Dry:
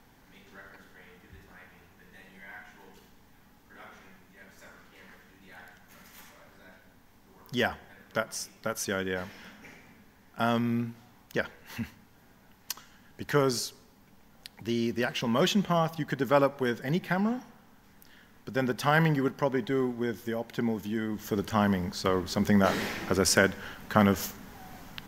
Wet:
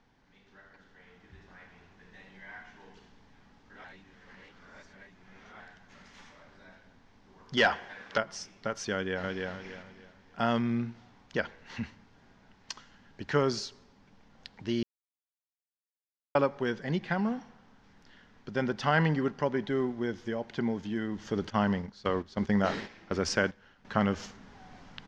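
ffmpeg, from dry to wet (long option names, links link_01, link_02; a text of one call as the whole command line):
ffmpeg -i in.wav -filter_complex "[0:a]asettb=1/sr,asplit=3[link_01][link_02][link_03];[link_01]atrim=end=7.574[link_04];[link_02]atrim=start=7.57:end=8.18,asetpts=PTS-STARTPTS,afade=type=in:duration=0.004:curve=qsin,afade=type=out:start_time=0.606:duration=0.004:curve=qsin,asplit=2[link_05][link_06];[link_06]highpass=frequency=720:poles=1,volume=16dB,asoftclip=type=tanh:threshold=-11.5dB[link_07];[link_05][link_07]amix=inputs=2:normalize=0,lowpass=frequency=6000:poles=1,volume=-6dB[link_08];[link_03]atrim=start=8.176[link_09];[link_04][link_08]acrossfade=duration=0.004:curve1=hsin:curve2=qsin[link_10];[link_10][link_09]acrossfade=duration=0.004:curve1=qsin:curve2=hsin,asplit=2[link_11][link_12];[link_12]afade=type=in:start_time=8.93:duration=0.01,afade=type=out:start_time=9.52:duration=0.01,aecho=0:1:300|600|900|1200:0.749894|0.224968|0.0674905|0.0202471[link_13];[link_11][link_13]amix=inputs=2:normalize=0,asettb=1/sr,asplit=3[link_14][link_15][link_16];[link_14]atrim=end=21.504[link_17];[link_15]atrim=start=21.5:end=23.85,asetpts=PTS-STARTPTS,afade=type=in:duration=0.004:curve=qsin,afade=type=out:start_time=2.346:duration=0.004:curve=qsin,agate=range=-13dB:threshold=-32dB:ratio=16:release=100:detection=peak[link_18];[link_16]atrim=start=23.846[link_19];[link_17][link_18]acrossfade=duration=0.004:curve1=hsin:curve2=qsin[link_20];[link_20][link_19]acrossfade=duration=0.004:curve1=qsin:curve2=hsin,asplit=5[link_21][link_22][link_23][link_24][link_25];[link_21]atrim=end=3.842[link_26];[link_22]atrim=start=3.838:end=5.602,asetpts=PTS-STARTPTS,areverse[link_27];[link_23]atrim=start=5.598:end=14.83,asetpts=PTS-STARTPTS,afade=type=out:start_time=9.228:duration=0.004:curve=hsin[link_28];[link_24]atrim=start=14.83:end=16.35,asetpts=PTS-STARTPTS,volume=0[link_29];[link_25]atrim=start=16.35,asetpts=PTS-STARTPTS,afade=type=in:duration=0.004:curve=hsin[link_30];[link_26][link_27]acrossfade=duration=0.004:curve1=hsin:curve2=hsin[link_31];[link_28][link_29][link_30]concat=n=3:v=0:a=1[link_32];[link_31][link_32]acrossfade=duration=0.004:curve1=hsin:curve2=hsin,lowpass=frequency=5700:width=0.5412,lowpass=frequency=5700:width=1.3066,dynaudnorm=framelen=250:gausssize=9:maxgain=7.5dB,volume=-8dB" out.wav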